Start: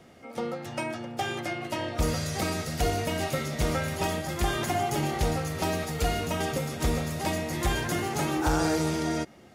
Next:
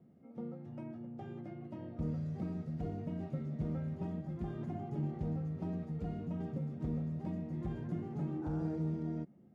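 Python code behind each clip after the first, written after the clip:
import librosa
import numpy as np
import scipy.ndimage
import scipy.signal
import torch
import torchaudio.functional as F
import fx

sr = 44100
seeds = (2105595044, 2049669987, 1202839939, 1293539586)

y = fx.bandpass_q(x, sr, hz=180.0, q=2.0)
y = y * librosa.db_to_amplitude(-2.5)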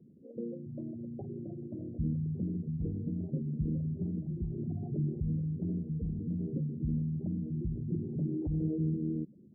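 y = fx.envelope_sharpen(x, sr, power=3.0)
y = y * librosa.db_to_amplitude(4.5)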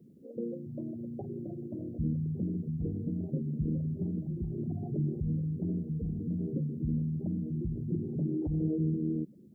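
y = fx.tilt_eq(x, sr, slope=1.5)
y = y * librosa.db_to_amplitude(5.0)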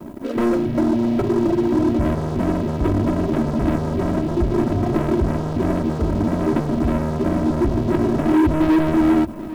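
y = fx.leveller(x, sr, passes=5)
y = y + 0.66 * np.pad(y, (int(3.1 * sr / 1000.0), 0))[:len(y)]
y = y + 10.0 ** (-17.0 / 20.0) * np.pad(y, (int(795 * sr / 1000.0), 0))[:len(y)]
y = y * librosa.db_to_amplitude(5.5)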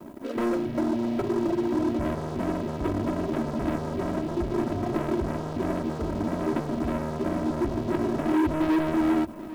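y = fx.low_shelf(x, sr, hz=210.0, db=-8.0)
y = y * librosa.db_to_amplitude(-5.0)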